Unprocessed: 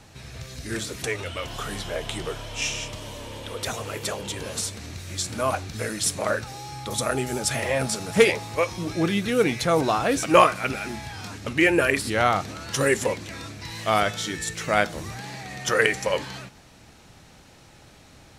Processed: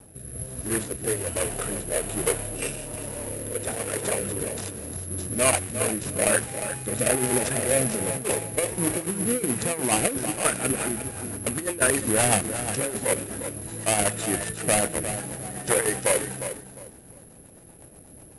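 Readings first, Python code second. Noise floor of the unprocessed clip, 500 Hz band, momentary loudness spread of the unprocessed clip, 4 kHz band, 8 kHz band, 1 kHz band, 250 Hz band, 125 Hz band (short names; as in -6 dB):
-51 dBFS, -2.0 dB, 16 LU, -5.0 dB, +7.5 dB, -5.5 dB, -1.0 dB, 0.0 dB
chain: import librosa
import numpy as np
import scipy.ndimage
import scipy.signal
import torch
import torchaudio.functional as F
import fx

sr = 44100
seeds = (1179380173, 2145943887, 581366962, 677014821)

p1 = scipy.ndimage.median_filter(x, 41, mode='constant')
p2 = fx.rotary_switch(p1, sr, hz=1.2, then_hz=8.0, switch_at_s=10.38)
p3 = fx.over_compress(p2, sr, threshold_db=-29.0, ratio=-0.5)
p4 = p3 + fx.echo_feedback(p3, sr, ms=354, feedback_pct=28, wet_db=-10.0, dry=0)
p5 = fx.dynamic_eq(p4, sr, hz=2400.0, q=0.85, threshold_db=-52.0, ratio=4.0, max_db=7)
p6 = (np.kron(p5[::4], np.eye(4)[0]) * 4)[:len(p5)]
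p7 = scipy.signal.sosfilt(scipy.signal.cheby1(5, 1.0, 10000.0, 'lowpass', fs=sr, output='sos'), p6)
p8 = fx.low_shelf(p7, sr, hz=250.0, db=-9.5)
y = p8 * librosa.db_to_amplitude(7.5)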